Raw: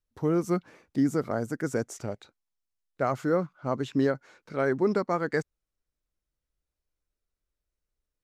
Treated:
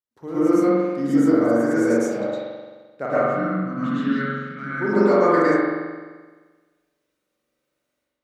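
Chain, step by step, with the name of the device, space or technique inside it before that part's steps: 3.06–4.78 EQ curve 230 Hz 0 dB, 380 Hz -24 dB, 880 Hz -26 dB, 1300 Hz -3 dB, 8700 Hz -17 dB; far laptop microphone (reverb RT60 0.45 s, pre-delay 0.104 s, DRR -7.5 dB; HPF 180 Hz 12 dB/oct; AGC gain up to 12 dB); spring tank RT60 1.4 s, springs 43 ms, chirp 25 ms, DRR -3 dB; gain -8.5 dB

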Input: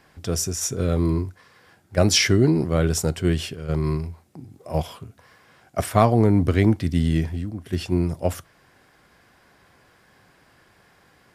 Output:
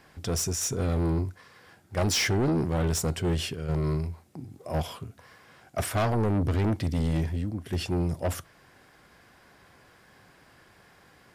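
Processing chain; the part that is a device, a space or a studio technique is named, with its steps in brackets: saturation between pre-emphasis and de-emphasis (high shelf 8500 Hz +7 dB; soft clip -21.5 dBFS, distortion -7 dB; high shelf 8500 Hz -7 dB)

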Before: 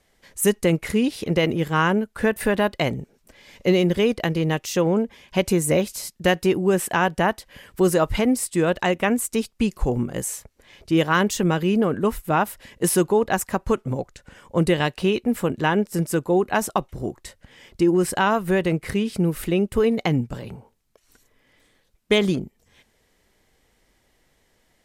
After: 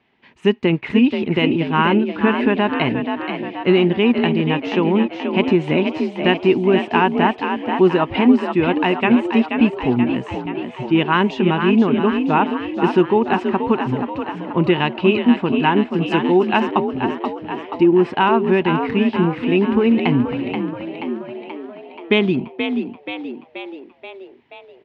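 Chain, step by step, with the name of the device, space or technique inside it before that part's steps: frequency-shifting delay pedal into a guitar cabinet (frequency-shifting echo 0.48 s, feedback 61%, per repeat +48 Hz, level -7 dB; speaker cabinet 110–3500 Hz, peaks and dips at 130 Hz +4 dB, 240 Hz +9 dB, 370 Hz +6 dB, 530 Hz -7 dB, 920 Hz +8 dB, 2600 Hz +9 dB); 16.02–16.6 high shelf 4000 Hz +11.5 dB

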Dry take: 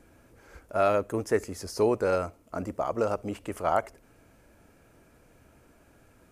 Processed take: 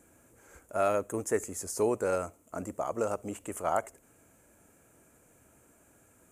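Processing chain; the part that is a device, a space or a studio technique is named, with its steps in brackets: budget condenser microphone (HPF 98 Hz 6 dB/oct; resonant high shelf 6000 Hz +7 dB, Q 3); gain -3.5 dB

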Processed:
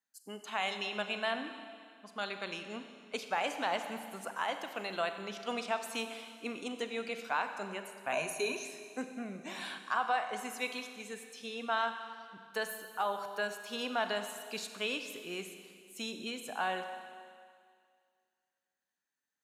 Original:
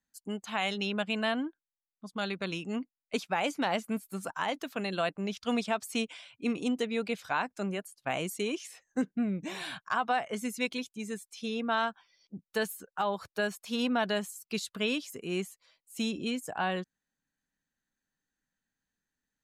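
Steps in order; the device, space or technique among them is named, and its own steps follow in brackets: filter by subtraction (in parallel: LPF 830 Hz 12 dB/oct + phase invert); 8.12–8.65 on the sum: ripple EQ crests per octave 1.5, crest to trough 16 dB; Schroeder reverb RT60 2.1 s, combs from 31 ms, DRR 7 dB; gain -4 dB

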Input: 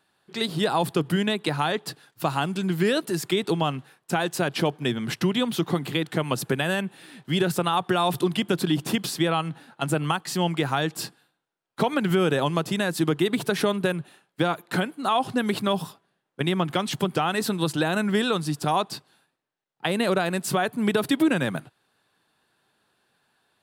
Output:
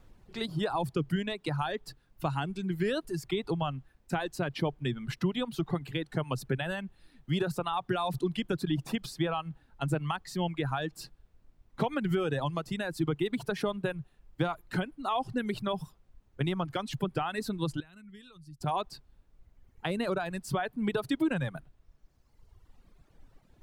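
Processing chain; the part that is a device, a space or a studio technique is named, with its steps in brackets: car interior (bell 130 Hz +8 dB 0.56 oct; high shelf 4800 Hz -8 dB; brown noise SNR 21 dB); reverb removal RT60 1.8 s; 17.8–18.61 passive tone stack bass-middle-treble 6-0-2; gain -7 dB

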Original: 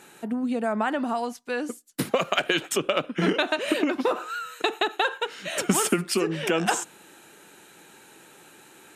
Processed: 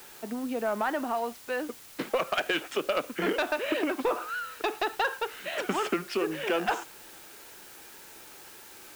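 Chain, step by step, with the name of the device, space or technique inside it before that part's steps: tape answering machine (BPF 320–3000 Hz; soft clip -16.5 dBFS, distortion -16 dB; wow and flutter; white noise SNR 18 dB); gain -1 dB

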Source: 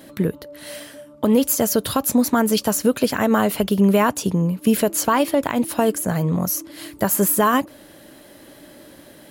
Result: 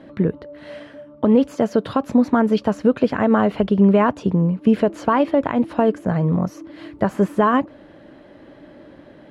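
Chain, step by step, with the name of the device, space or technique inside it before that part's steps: 1.54–2.04 HPF 130 Hz; phone in a pocket (LPF 3300 Hz 12 dB/oct; high shelf 2400 Hz -11 dB); gain +2 dB

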